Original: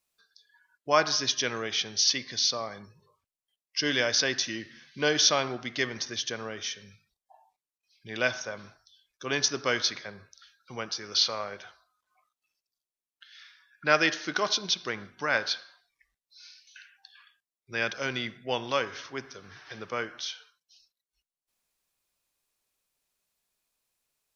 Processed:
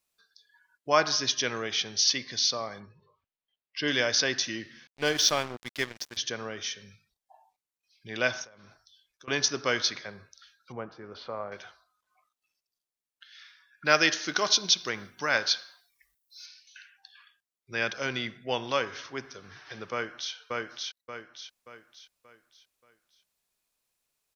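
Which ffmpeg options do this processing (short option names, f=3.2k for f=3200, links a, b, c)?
-filter_complex "[0:a]asettb=1/sr,asplit=3[a][b][c];[a]atrim=end=2.804[d];[b]atrim=start=2.8:end=3.88,asetpts=PTS-STARTPTS,afade=t=in:d=0.004:c=qsin,afade=t=out:st=1.076:d=0.004:c=qsin,lowpass=f=4k:w=0.5412,lowpass=f=4k:w=1.3066[e];[c]atrim=start=3.876[f];[d][e]acrossfade=d=0.004:c1=hsin:c2=qsin[g];[g][f]acrossfade=d=0.004:c1=qsin:c2=hsin,asettb=1/sr,asplit=3[h][i][j];[h]atrim=end=4.874[k];[i]atrim=start=4.87:end=6.17,asetpts=PTS-STARTPTS,afade=t=in:d=0.004:c=qsin,afade=t=out:st=1.296:d=0.004:c=qsin,aeval=exprs='sgn(val(0))*max(abs(val(0))-0.0158,0)':c=same[l];[j]atrim=start=6.166[m];[k][l]acrossfade=d=0.004:c1=hsin:c2=qsin[n];[n][m]acrossfade=d=0.004:c1=qsin:c2=hsin,asettb=1/sr,asplit=3[o][p][q];[o]atrim=end=8.444[r];[p]atrim=start=8.44:end=9.28,asetpts=PTS-STARTPTS,afade=t=in:d=0.004:c=qsin,afade=t=out:st=0.836:d=0.004:c=qsin,acompressor=threshold=-49dB:ratio=16:attack=3.2:release=140:knee=1:detection=peak[s];[q]atrim=start=9.276[t];[r][s]acrossfade=d=0.004:c1=hsin:c2=qsin[u];[u][t]acrossfade=d=0.004:c1=qsin:c2=hsin,asettb=1/sr,asplit=3[v][w][x];[v]atrim=end=10.724[y];[w]atrim=start=10.72:end=11.52,asetpts=PTS-STARTPTS,afade=t=in:d=0.004:c=qsin,afade=t=out:st=0.796:d=0.004:c=qsin,lowpass=1.1k[z];[x]atrim=start=11.516[aa];[y][z]acrossfade=d=0.004:c1=hsin:c2=qsin[ab];[ab][aa]acrossfade=d=0.004:c1=qsin:c2=hsin,asettb=1/sr,asplit=3[ac][ad][ae];[ac]atrim=end=13.854[af];[ad]atrim=start=13.85:end=16.46,asetpts=PTS-STARTPTS,afade=t=in:d=0.004:c=qsin,afade=t=out:st=2.606:d=0.004:c=qsin,aemphasis=mode=production:type=50fm[ag];[ae]atrim=start=16.456[ah];[af][ag]acrossfade=d=0.004:c1=hsin:c2=qsin[ai];[ai][ah]acrossfade=d=0.004:c1=qsin:c2=hsin,asplit=2[aj][ak];[ak]afade=t=in:st=19.92:d=0.01,afade=t=out:st=20.33:d=0.01,aecho=0:1:580|1160|1740|2320|2900:0.891251|0.3565|0.1426|0.0570401|0.022816[al];[aj][al]amix=inputs=2:normalize=0"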